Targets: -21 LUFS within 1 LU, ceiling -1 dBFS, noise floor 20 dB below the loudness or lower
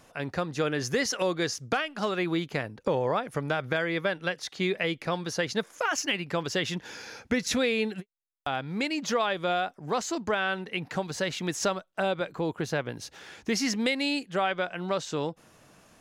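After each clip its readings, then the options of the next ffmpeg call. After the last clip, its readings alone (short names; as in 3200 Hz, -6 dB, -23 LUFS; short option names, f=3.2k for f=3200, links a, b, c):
loudness -29.5 LUFS; peak -13.5 dBFS; loudness target -21.0 LUFS
-> -af "volume=8.5dB"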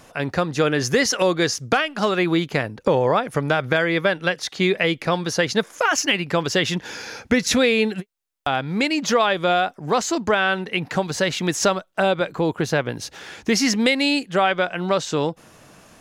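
loudness -21.0 LUFS; peak -5.0 dBFS; noise floor -53 dBFS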